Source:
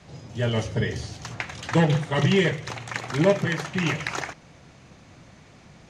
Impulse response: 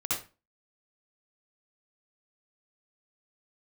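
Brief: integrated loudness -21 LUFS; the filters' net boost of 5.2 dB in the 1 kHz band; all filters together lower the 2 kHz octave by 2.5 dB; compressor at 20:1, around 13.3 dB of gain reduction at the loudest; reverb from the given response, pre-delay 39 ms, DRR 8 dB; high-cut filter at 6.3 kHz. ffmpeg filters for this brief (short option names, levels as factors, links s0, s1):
-filter_complex "[0:a]lowpass=6300,equalizer=f=1000:t=o:g=7.5,equalizer=f=2000:t=o:g=-5,acompressor=threshold=0.0562:ratio=20,asplit=2[s0][s1];[1:a]atrim=start_sample=2205,adelay=39[s2];[s1][s2]afir=irnorm=-1:irlink=0,volume=0.178[s3];[s0][s3]amix=inputs=2:normalize=0,volume=3.16"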